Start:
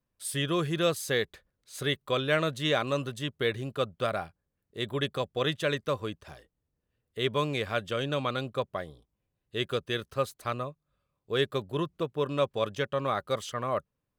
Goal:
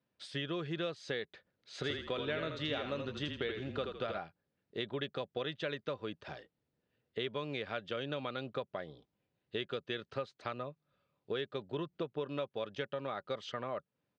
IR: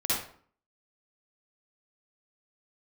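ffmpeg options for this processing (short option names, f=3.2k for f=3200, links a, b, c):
-filter_complex "[0:a]highpass=150,acompressor=threshold=-38dB:ratio=6,lowpass=f=4.7k:w=0.5412,lowpass=f=4.7k:w=1.3066,bandreject=f=1.1k:w=8.3,asplit=3[a][b][c];[a]afade=t=out:st=1.83:d=0.02[d];[b]asplit=6[e][f][g][h][i][j];[f]adelay=81,afreqshift=-31,volume=-5.5dB[k];[g]adelay=162,afreqshift=-62,volume=-13.5dB[l];[h]adelay=243,afreqshift=-93,volume=-21.4dB[m];[i]adelay=324,afreqshift=-124,volume=-29.4dB[n];[j]adelay=405,afreqshift=-155,volume=-37.3dB[o];[e][k][l][m][n][o]amix=inputs=6:normalize=0,afade=t=in:st=1.83:d=0.02,afade=t=out:st=4.17:d=0.02[p];[c]afade=t=in:st=4.17:d=0.02[q];[d][p][q]amix=inputs=3:normalize=0,volume=3dB"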